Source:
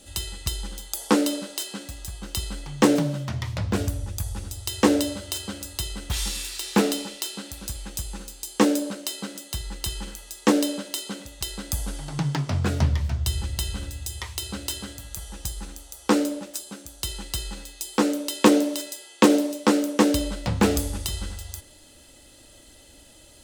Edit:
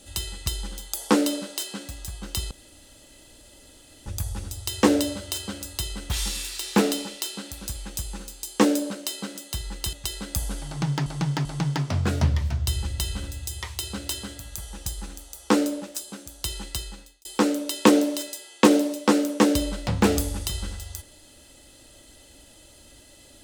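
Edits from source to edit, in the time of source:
2.51–4.06 s: room tone
9.93–11.30 s: delete
12.04–12.43 s: loop, 3 plays
17.25–17.84 s: fade out linear

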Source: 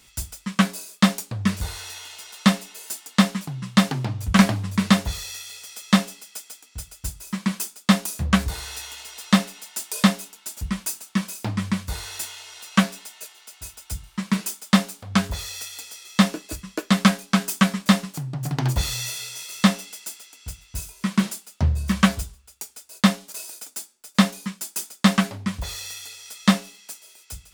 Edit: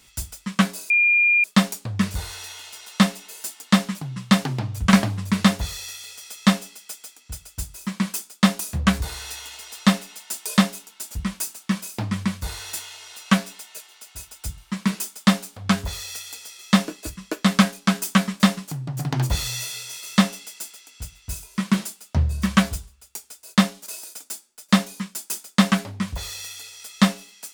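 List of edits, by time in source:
0.90 s: add tone 2.41 kHz -14 dBFS 0.54 s

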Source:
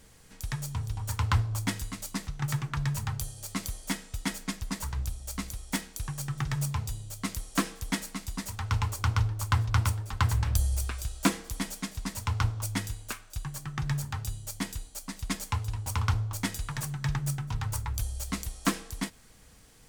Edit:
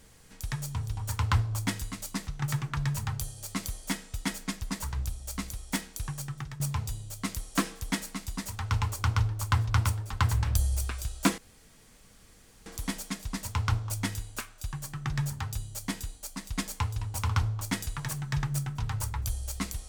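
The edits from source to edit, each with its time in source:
6.10–6.60 s: fade out linear, to -15 dB
11.38 s: insert room tone 1.28 s

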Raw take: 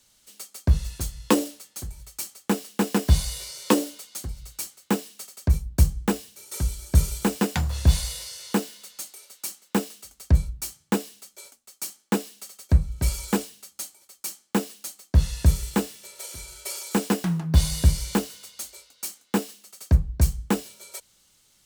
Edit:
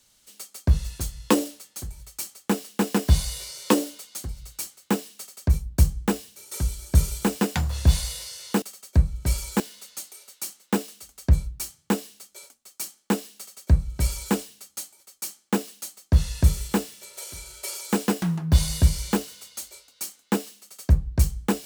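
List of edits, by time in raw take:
12.38–13.36 s: copy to 8.62 s

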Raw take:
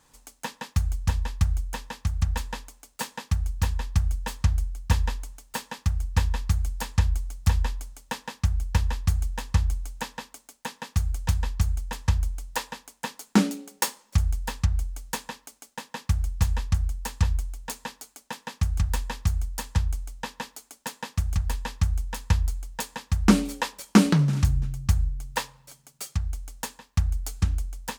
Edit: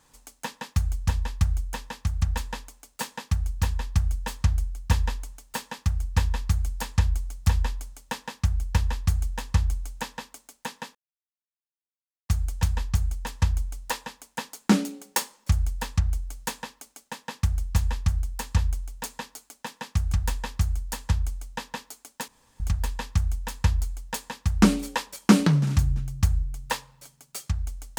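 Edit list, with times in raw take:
10.95 s: insert silence 1.34 s
20.94–21.26 s: room tone

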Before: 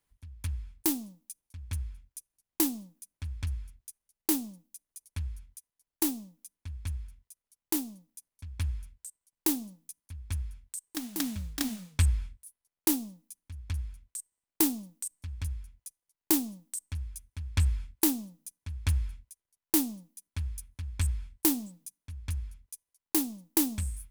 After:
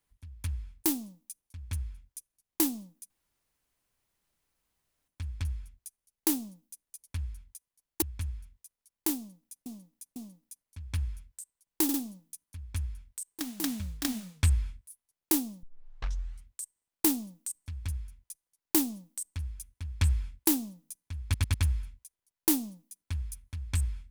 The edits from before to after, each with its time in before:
3.10 s: insert room tone 1.98 s
6.04–6.68 s: delete
7.82–8.32 s: loop, 3 plays
9.50 s: stutter 0.05 s, 3 plays
13.19 s: tape start 0.83 s
18.80 s: stutter 0.10 s, 4 plays

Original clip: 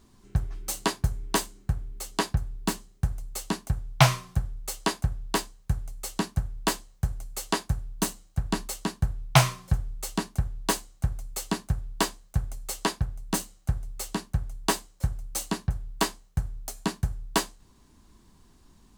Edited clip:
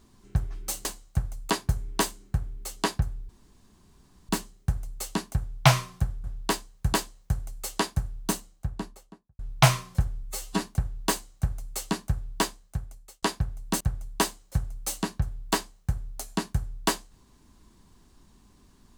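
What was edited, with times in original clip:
2.64 s: insert room tone 1.00 s
4.59–5.09 s: delete
5.78–6.66 s: delete
7.93–9.12 s: studio fade out
9.96–10.21 s: stretch 1.5×
10.72–11.37 s: copy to 0.85 s
11.99–12.83 s: fade out
13.41–14.29 s: delete

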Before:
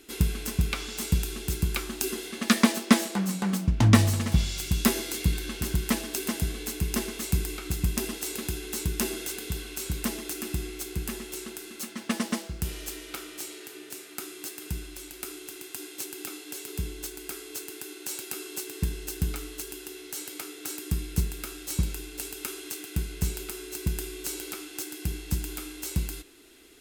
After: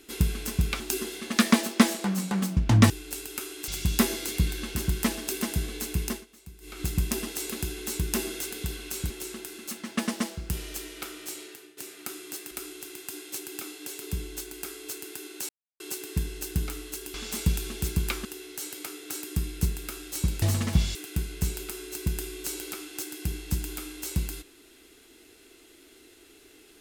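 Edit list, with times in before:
0.80–1.91 s: move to 19.80 s
4.01–4.54 s: swap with 21.97–22.75 s
6.88–7.70 s: dip -21 dB, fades 0.24 s
9.96–11.22 s: delete
13.55–13.89 s: fade out, to -15 dB
14.63–15.17 s: delete
18.15–18.46 s: mute

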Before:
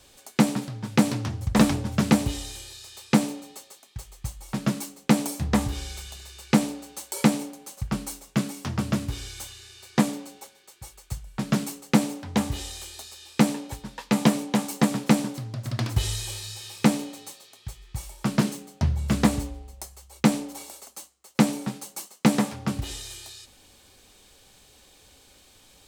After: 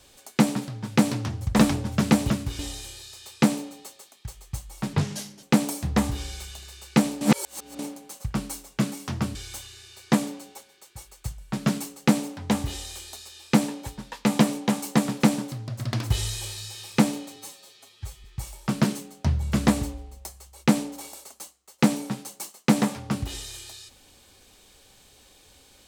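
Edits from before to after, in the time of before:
4.64–5.00 s: speed 72%
6.78–7.36 s: reverse
8.92–9.21 s: move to 2.30 s
17.22–17.81 s: stretch 1.5×

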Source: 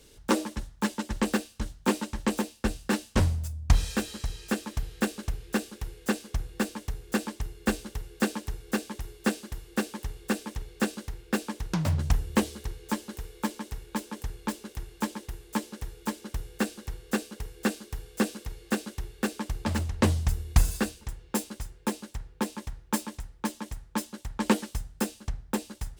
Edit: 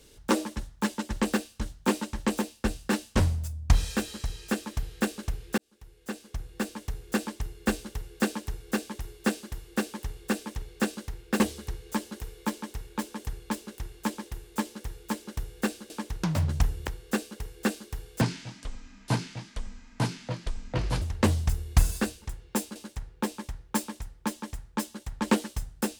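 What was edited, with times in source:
5.58–6.97 s: fade in
11.40–12.37 s: move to 16.87 s
18.21–19.81 s: speed 57%
21.55–21.94 s: delete

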